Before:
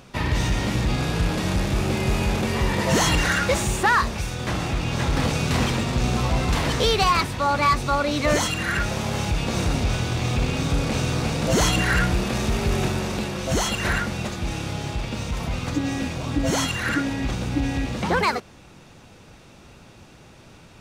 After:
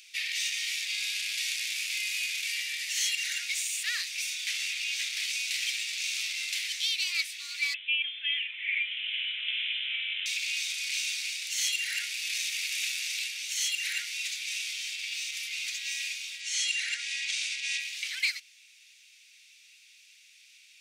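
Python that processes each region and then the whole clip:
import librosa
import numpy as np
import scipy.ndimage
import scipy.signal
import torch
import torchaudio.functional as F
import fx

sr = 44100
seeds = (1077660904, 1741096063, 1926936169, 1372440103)

y = fx.chain(x, sr, fx.highpass(hz=700.0, slope=12),
    fx.freq_invert(carrier_hz=3800), at=(7.74, 10.26))
y = fx.chain(y, sr, fx.lowpass(hz=9400.0, slope=24),
    fx.env_flatten(amount_pct=70), at=(16.4, 17.8))
y = scipy.signal.sosfilt(scipy.signal.ellip(4, 1.0, 60, 2200.0, 'highpass', fs=sr, output='sos'), y)
y = fx.rider(y, sr, range_db=4, speed_s=0.5)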